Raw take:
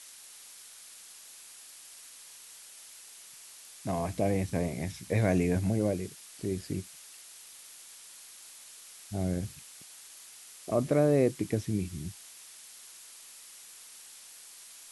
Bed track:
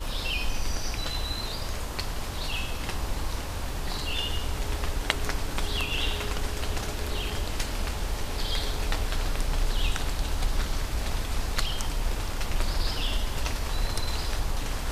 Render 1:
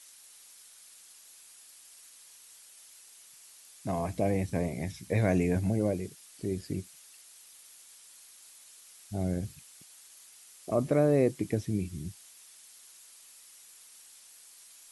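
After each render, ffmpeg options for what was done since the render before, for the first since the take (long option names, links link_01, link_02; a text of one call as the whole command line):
ffmpeg -i in.wav -af "afftdn=noise_reduction=6:noise_floor=-51" out.wav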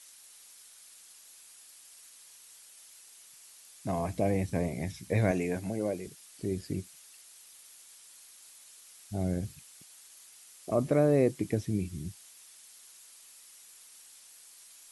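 ffmpeg -i in.wav -filter_complex "[0:a]asettb=1/sr,asplit=3[link_01][link_02][link_03];[link_01]atrim=end=5.314[link_04];[link_02]atrim=start=5.31:end=6.07,asetpts=PTS-STARTPTS,afade=type=in:duration=0.004:curve=qsin,afade=type=out:start_time=0.756:duration=0.004:curve=qsin,highpass=frequency=340:poles=1[link_05];[link_03]atrim=start=6.066[link_06];[link_04][link_05]acrossfade=duration=0.004:curve1=hsin:curve2=qsin[link_07];[link_07][link_06]acrossfade=duration=0.004:curve1=qsin:curve2=hsin" out.wav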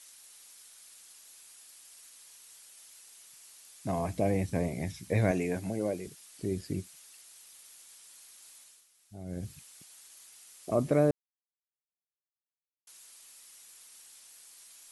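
ffmpeg -i in.wav -filter_complex "[0:a]asplit=5[link_01][link_02][link_03][link_04][link_05];[link_01]atrim=end=8.88,asetpts=PTS-STARTPTS,afade=type=out:start_time=8.58:duration=0.3:silence=0.237137[link_06];[link_02]atrim=start=8.88:end=9.25,asetpts=PTS-STARTPTS,volume=-12.5dB[link_07];[link_03]atrim=start=9.25:end=11.11,asetpts=PTS-STARTPTS,afade=type=in:duration=0.3:silence=0.237137,afade=type=out:start_time=1.856:duration=0.004:curve=hsin[link_08];[link_04]atrim=start=11.11:end=12.87,asetpts=PTS-STARTPTS,volume=0[link_09];[link_05]atrim=start=12.87,asetpts=PTS-STARTPTS,afade=type=in:duration=0.004:curve=hsin[link_10];[link_06][link_07][link_08][link_09][link_10]concat=n=5:v=0:a=1" out.wav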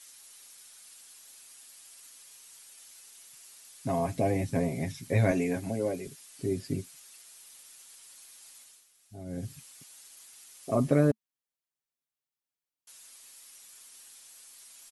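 ffmpeg -i in.wav -af "equalizer=frequency=220:width_type=o:width=0.28:gain=5,aecho=1:1:7.4:0.68" out.wav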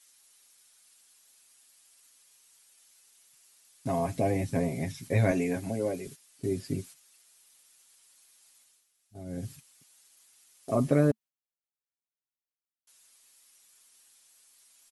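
ffmpeg -i in.wav -af "agate=range=-9dB:threshold=-46dB:ratio=16:detection=peak" out.wav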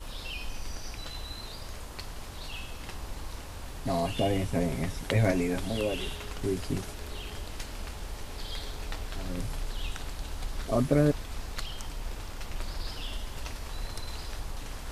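ffmpeg -i in.wav -i bed.wav -filter_complex "[1:a]volume=-8.5dB[link_01];[0:a][link_01]amix=inputs=2:normalize=0" out.wav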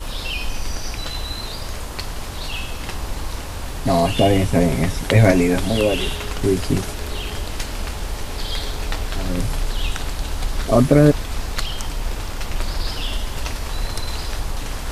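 ffmpeg -i in.wav -af "volume=12dB,alimiter=limit=-1dB:level=0:latency=1" out.wav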